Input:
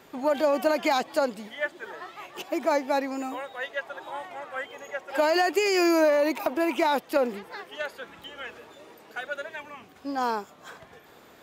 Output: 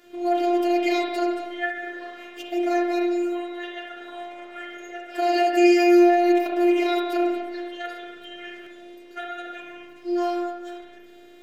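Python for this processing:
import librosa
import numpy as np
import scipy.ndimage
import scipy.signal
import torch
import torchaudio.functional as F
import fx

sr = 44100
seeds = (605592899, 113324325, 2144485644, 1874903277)

y = scipy.signal.sosfilt(scipy.signal.butter(2, 110.0, 'highpass', fs=sr, output='sos'), x)
y = fx.high_shelf(y, sr, hz=8100.0, db=-8.5)
y = fx.hum_notches(y, sr, base_hz=60, count=5)
y = y + 0.65 * np.pad(y, (int(6.9 * sr / 1000.0), 0))[:len(y)]
y = fx.robotise(y, sr, hz=350.0)
y = fx.peak_eq(y, sr, hz=1000.0, db=-11.0, octaves=0.68)
y = fx.rev_spring(y, sr, rt60_s=1.3, pass_ms=(34, 60), chirp_ms=35, drr_db=-2.0)
y = fx.buffer_glitch(y, sr, at_s=(8.63,), block=512, repeats=2)
y = fx.end_taper(y, sr, db_per_s=120.0)
y = y * 10.0 ** (1.0 / 20.0)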